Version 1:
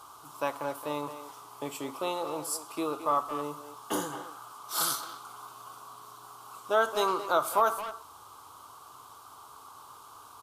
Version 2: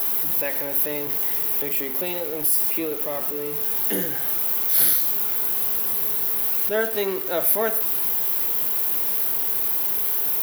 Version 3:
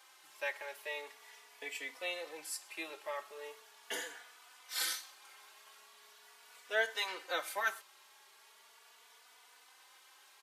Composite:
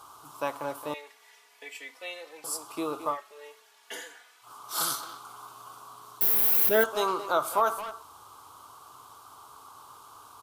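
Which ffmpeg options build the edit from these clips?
ffmpeg -i take0.wav -i take1.wav -i take2.wav -filter_complex "[2:a]asplit=2[link_01][link_02];[0:a]asplit=4[link_03][link_04][link_05][link_06];[link_03]atrim=end=0.942[link_07];[link_01]atrim=start=0.938:end=2.442[link_08];[link_04]atrim=start=2.438:end=3.18[link_09];[link_02]atrim=start=3.08:end=4.51[link_10];[link_05]atrim=start=4.41:end=6.212[link_11];[1:a]atrim=start=6.208:end=6.842[link_12];[link_06]atrim=start=6.838[link_13];[link_07][link_08]acrossfade=duration=0.004:curve1=hsin:curve2=hsin[link_14];[link_14][link_09]acrossfade=duration=0.004:curve1=hsin:curve2=hsin[link_15];[link_15][link_10]acrossfade=duration=0.1:curve1=tri:curve2=tri[link_16];[link_16][link_11]acrossfade=duration=0.1:curve1=tri:curve2=tri[link_17];[link_17][link_12]acrossfade=duration=0.004:curve1=hsin:curve2=hsin[link_18];[link_18][link_13]acrossfade=duration=0.004:curve1=hsin:curve2=hsin" out.wav

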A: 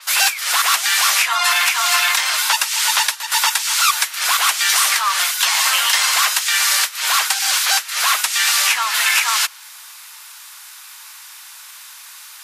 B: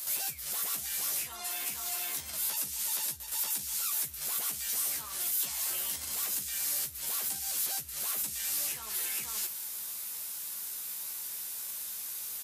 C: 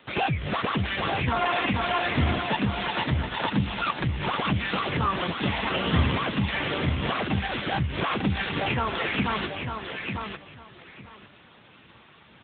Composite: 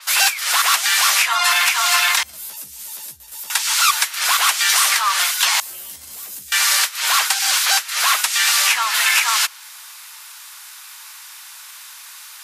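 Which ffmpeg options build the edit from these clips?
ffmpeg -i take0.wav -i take1.wav -filter_complex "[1:a]asplit=2[link_01][link_02];[0:a]asplit=3[link_03][link_04][link_05];[link_03]atrim=end=2.232[link_06];[link_01]atrim=start=2.228:end=3.502[link_07];[link_04]atrim=start=3.498:end=5.602[link_08];[link_02]atrim=start=5.598:end=6.522[link_09];[link_05]atrim=start=6.518[link_10];[link_06][link_07]acrossfade=duration=0.004:curve1=hsin:curve2=hsin[link_11];[link_11][link_08]acrossfade=duration=0.004:curve1=hsin:curve2=hsin[link_12];[link_12][link_09]acrossfade=duration=0.004:curve1=hsin:curve2=hsin[link_13];[link_13][link_10]acrossfade=duration=0.004:curve1=hsin:curve2=hsin" out.wav

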